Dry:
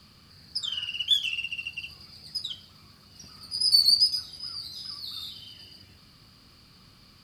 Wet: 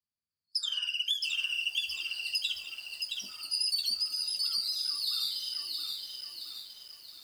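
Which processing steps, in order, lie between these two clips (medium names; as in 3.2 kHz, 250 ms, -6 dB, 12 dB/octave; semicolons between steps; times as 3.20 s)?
spectral noise reduction 27 dB; gate with hold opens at -51 dBFS; treble shelf 4.4 kHz +9 dB; compression 16:1, threshold -28 dBFS, peak gain reduction 19 dB; bit-crushed delay 670 ms, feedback 55%, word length 9-bit, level -3.5 dB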